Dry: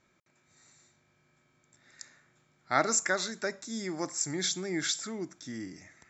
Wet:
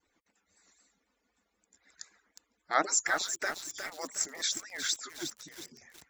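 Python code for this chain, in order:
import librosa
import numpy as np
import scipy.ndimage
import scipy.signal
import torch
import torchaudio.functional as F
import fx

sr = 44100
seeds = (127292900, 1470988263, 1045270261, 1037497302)

y = fx.hpss_only(x, sr, part='percussive')
y = fx.vibrato(y, sr, rate_hz=3.9, depth_cents=69.0)
y = fx.echo_crushed(y, sr, ms=361, feedback_pct=55, bits=7, wet_db=-7)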